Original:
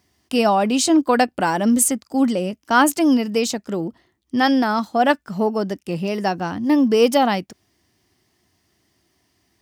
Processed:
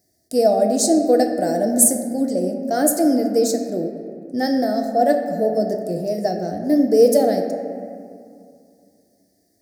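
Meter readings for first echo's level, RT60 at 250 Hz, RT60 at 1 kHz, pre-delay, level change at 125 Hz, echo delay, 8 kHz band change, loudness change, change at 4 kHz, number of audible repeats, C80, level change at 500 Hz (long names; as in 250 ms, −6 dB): no echo audible, 2.8 s, 2.3 s, 6 ms, −2.0 dB, no echo audible, +3.5 dB, +0.5 dB, −6.0 dB, no echo audible, 7.0 dB, +4.0 dB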